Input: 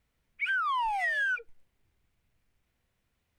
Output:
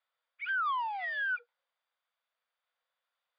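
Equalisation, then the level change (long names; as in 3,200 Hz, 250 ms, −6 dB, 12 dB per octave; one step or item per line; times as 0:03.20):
Chebyshev high-pass filter 480 Hz, order 10
Chebyshev low-pass with heavy ripple 4,900 Hz, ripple 9 dB
0.0 dB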